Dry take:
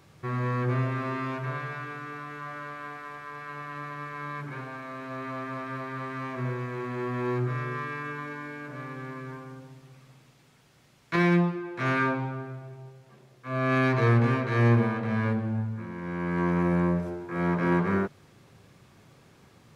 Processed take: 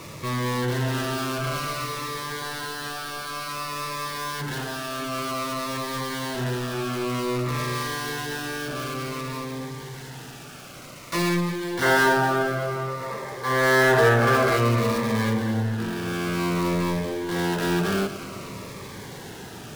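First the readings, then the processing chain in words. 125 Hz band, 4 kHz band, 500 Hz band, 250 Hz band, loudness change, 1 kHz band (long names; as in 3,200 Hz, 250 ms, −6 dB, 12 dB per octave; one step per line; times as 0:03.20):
0.0 dB, +16.0 dB, +7.0 dB, +1.5 dB, +4.0 dB, +6.0 dB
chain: gap after every zero crossing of 0.18 ms
low-shelf EQ 310 Hz −8 dB
power curve on the samples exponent 0.5
gain on a spectral selection 0:11.83–0:14.57, 370–2,200 Hz +9 dB
on a send: delay that swaps between a low-pass and a high-pass 117 ms, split 1,100 Hz, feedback 86%, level −13 dB
on the sum: phaser whose notches keep moving one way falling 0.54 Hz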